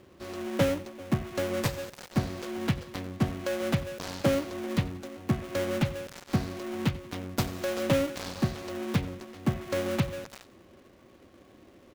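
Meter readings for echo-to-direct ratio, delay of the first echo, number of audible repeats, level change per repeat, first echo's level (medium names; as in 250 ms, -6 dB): -17.5 dB, 91 ms, 3, -7.5 dB, -18.5 dB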